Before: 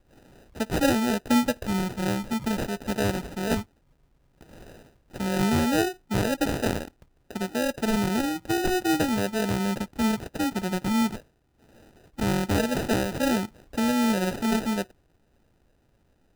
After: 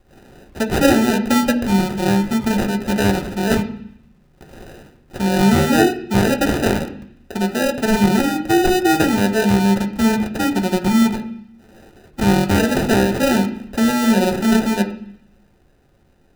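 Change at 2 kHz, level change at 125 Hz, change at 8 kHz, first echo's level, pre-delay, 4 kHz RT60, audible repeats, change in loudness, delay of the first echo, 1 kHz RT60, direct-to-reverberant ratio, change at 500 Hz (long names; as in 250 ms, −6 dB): +9.0 dB, +9.0 dB, +7.0 dB, no echo audible, 3 ms, 0.85 s, no echo audible, +9.0 dB, no echo audible, 0.70 s, 2.5 dB, +9.0 dB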